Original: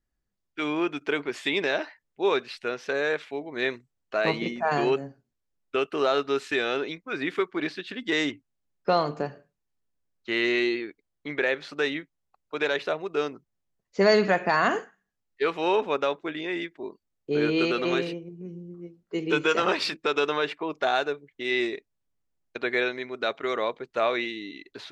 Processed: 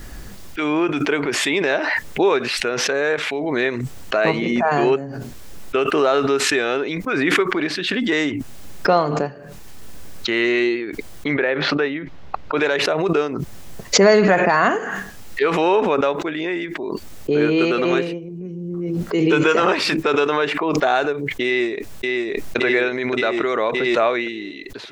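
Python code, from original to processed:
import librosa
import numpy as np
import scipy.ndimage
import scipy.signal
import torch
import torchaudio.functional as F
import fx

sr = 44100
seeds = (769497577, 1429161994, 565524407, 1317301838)

y = fx.air_absorb(x, sr, metres=240.0, at=(11.34, 12.58))
y = fx.echo_throw(y, sr, start_s=21.46, length_s=1.11, ms=570, feedback_pct=60, wet_db=-2.5)
y = fx.dynamic_eq(y, sr, hz=4100.0, q=1.2, threshold_db=-44.0, ratio=4.0, max_db=-6)
y = fx.pre_swell(y, sr, db_per_s=21.0)
y = y * 10.0 ** (6.5 / 20.0)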